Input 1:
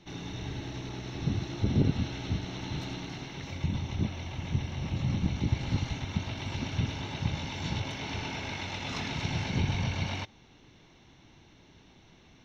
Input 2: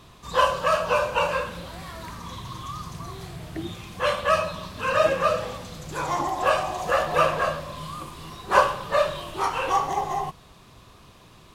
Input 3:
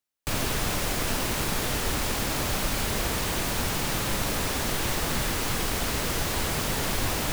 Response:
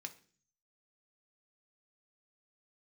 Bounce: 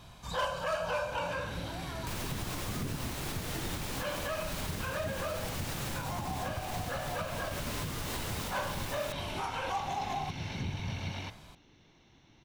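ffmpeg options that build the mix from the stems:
-filter_complex "[0:a]bandreject=f=63.67:t=h:w=4,bandreject=f=127.34:t=h:w=4,bandreject=f=191.01:t=h:w=4,bandreject=f=254.68:t=h:w=4,bandreject=f=318.35:t=h:w=4,bandreject=f=382.02:t=h:w=4,bandreject=f=445.69:t=h:w=4,bandreject=f=509.36:t=h:w=4,bandreject=f=573.03:t=h:w=4,bandreject=f=636.7:t=h:w=4,bandreject=f=700.37:t=h:w=4,bandreject=f=764.04:t=h:w=4,bandreject=f=827.71:t=h:w=4,bandreject=f=891.38:t=h:w=4,bandreject=f=955.05:t=h:w=4,bandreject=f=1.01872k:t=h:w=4,bandreject=f=1.08239k:t=h:w=4,bandreject=f=1.14606k:t=h:w=4,bandreject=f=1.20973k:t=h:w=4,bandreject=f=1.2734k:t=h:w=4,bandreject=f=1.33707k:t=h:w=4,bandreject=f=1.40074k:t=h:w=4,bandreject=f=1.46441k:t=h:w=4,bandreject=f=1.52808k:t=h:w=4,bandreject=f=1.59175k:t=h:w=4,bandreject=f=1.65542k:t=h:w=4,bandreject=f=1.71909k:t=h:w=4,bandreject=f=1.78276k:t=h:w=4,bandreject=f=1.84643k:t=h:w=4,bandreject=f=1.9101k:t=h:w=4,bandreject=f=1.97377k:t=h:w=4,bandreject=f=2.03744k:t=h:w=4,bandreject=f=2.10111k:t=h:w=4,bandreject=f=2.16478k:t=h:w=4,bandreject=f=2.22845k:t=h:w=4,bandreject=f=2.29212k:t=h:w=4,bandreject=f=2.35579k:t=h:w=4,adelay=1050,volume=-4.5dB[a];[1:a]aecho=1:1:1.3:0.48,asoftclip=type=hard:threshold=-15dB,volume=-3.5dB[b];[2:a]adelay=1800,volume=-5.5dB[c];[b][c]amix=inputs=2:normalize=0,alimiter=limit=-23.5dB:level=0:latency=1:release=166,volume=0dB[d];[a][d]amix=inputs=2:normalize=0,alimiter=level_in=2dB:limit=-24dB:level=0:latency=1:release=265,volume=-2dB"

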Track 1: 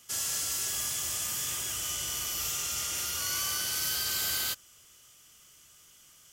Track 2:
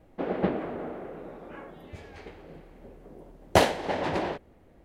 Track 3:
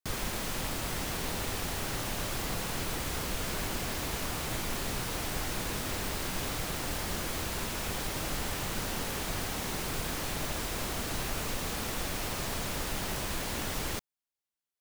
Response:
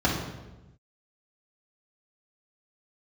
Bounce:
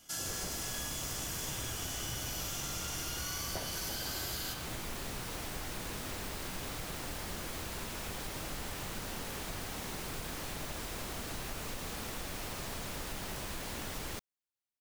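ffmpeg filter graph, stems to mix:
-filter_complex "[0:a]volume=-6dB,asplit=2[a][b];[b]volume=-10dB[c];[1:a]volume=-15dB[d];[2:a]adelay=200,volume=-5dB[e];[3:a]atrim=start_sample=2205[f];[c][f]afir=irnorm=-1:irlink=0[g];[a][d][e][g]amix=inputs=4:normalize=0,acompressor=threshold=-35dB:ratio=6"

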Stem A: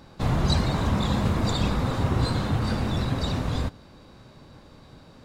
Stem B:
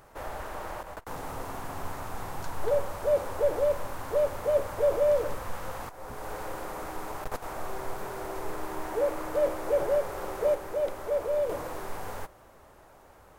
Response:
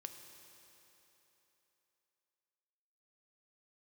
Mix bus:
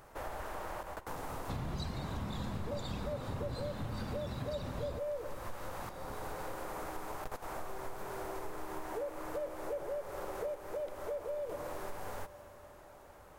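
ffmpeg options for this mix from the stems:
-filter_complex "[0:a]adelay=1300,volume=-3dB[a];[1:a]volume=-4.5dB,asplit=2[b][c];[c]volume=-3dB[d];[2:a]atrim=start_sample=2205[e];[d][e]afir=irnorm=-1:irlink=0[f];[a][b][f]amix=inputs=3:normalize=0,acompressor=threshold=-37dB:ratio=5"

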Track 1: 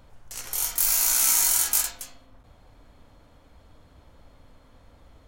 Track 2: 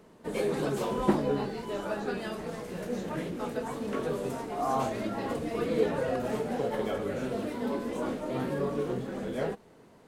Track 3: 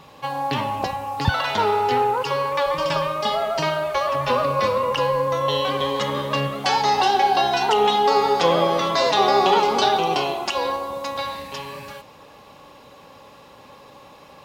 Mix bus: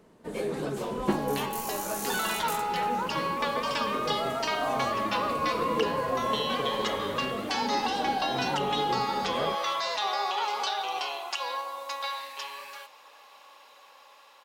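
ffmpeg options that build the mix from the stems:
-filter_complex "[0:a]adelay=750,volume=-16.5dB[a];[1:a]volume=-2dB[b];[2:a]dynaudnorm=f=390:g=11:m=5.5dB,highpass=890,alimiter=limit=-12dB:level=0:latency=1:release=439,adelay=850,volume=-6.5dB[c];[a][b][c]amix=inputs=3:normalize=0"

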